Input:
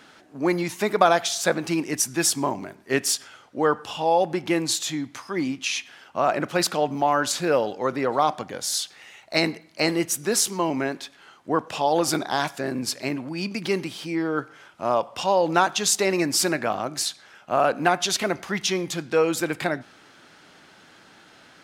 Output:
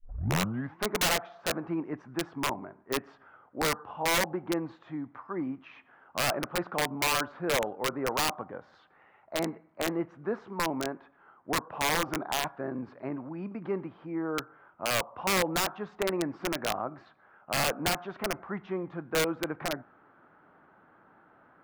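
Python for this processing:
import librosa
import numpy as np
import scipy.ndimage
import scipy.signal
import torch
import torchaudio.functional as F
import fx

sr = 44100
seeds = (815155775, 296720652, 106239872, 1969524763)

y = fx.tape_start_head(x, sr, length_s=0.8)
y = fx.ladder_lowpass(y, sr, hz=1500.0, resonance_pct=35)
y = (np.mod(10.0 ** (20.0 / 20.0) * y + 1.0, 2.0) - 1.0) / 10.0 ** (20.0 / 20.0)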